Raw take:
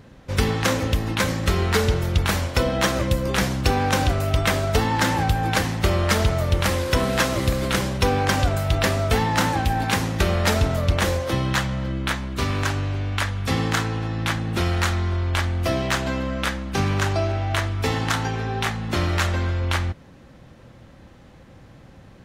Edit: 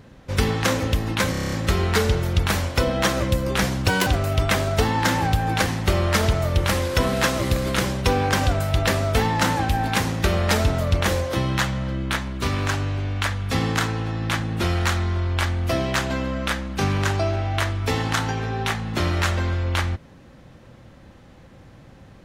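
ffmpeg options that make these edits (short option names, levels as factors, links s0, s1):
-filter_complex "[0:a]asplit=10[s0][s1][s2][s3][s4][s5][s6][s7][s8][s9];[s0]atrim=end=1.342[s10];[s1]atrim=start=1.308:end=1.342[s11];[s2]atrim=start=1.308:end=1.342[s12];[s3]atrim=start=1.308:end=1.342[s13];[s4]atrim=start=1.308:end=1.342[s14];[s5]atrim=start=1.308:end=1.342[s15];[s6]atrim=start=1.308:end=1.342[s16];[s7]atrim=start=1.308:end=3.674[s17];[s8]atrim=start=3.67:end=4.03,asetpts=PTS-STARTPTS,asetrate=84672,aresample=44100[s18];[s9]atrim=start=4.026[s19];[s10][s11]acrossfade=d=0.004:c1=hsin:c2=hsin[s20];[s20][s12]acrossfade=d=0.004:c1=hsin:c2=hsin[s21];[s21][s13]acrossfade=d=0.004:c1=hsin:c2=hsin[s22];[s22][s14]acrossfade=d=0.004:c1=hsin:c2=hsin[s23];[s23][s15]acrossfade=d=0.004:c1=hsin:c2=hsin[s24];[s24][s16]acrossfade=d=0.004:c1=hsin:c2=hsin[s25];[s25][s17]acrossfade=d=0.004:c1=hsin:c2=hsin[s26];[s26][s18]acrossfade=d=0.004:c1=hsin:c2=hsin[s27];[s27][s19]acrossfade=d=0.004:c1=hsin:c2=hsin"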